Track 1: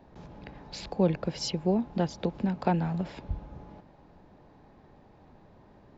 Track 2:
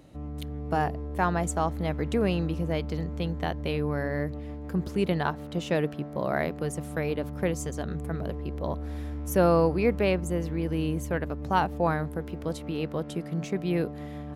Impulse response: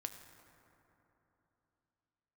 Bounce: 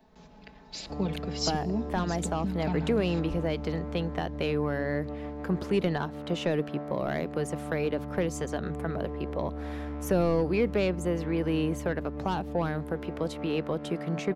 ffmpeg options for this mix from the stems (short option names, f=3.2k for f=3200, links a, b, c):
-filter_complex "[0:a]highshelf=f=2.2k:g=10,aecho=1:1:4.6:0.92,volume=-11dB,asplit=2[a][b];[b]volume=-7dB[c];[1:a]asplit=2[d][e];[e]highpass=f=720:p=1,volume=13dB,asoftclip=type=tanh:threshold=-11dB[f];[d][f]amix=inputs=2:normalize=0,lowpass=f=1.8k:p=1,volume=-6dB,adelay=750,volume=1dB[g];[2:a]atrim=start_sample=2205[h];[c][h]afir=irnorm=-1:irlink=0[i];[a][g][i]amix=inputs=3:normalize=0,acrossover=split=400|3000[j][k][l];[k]acompressor=threshold=-32dB:ratio=6[m];[j][m][l]amix=inputs=3:normalize=0"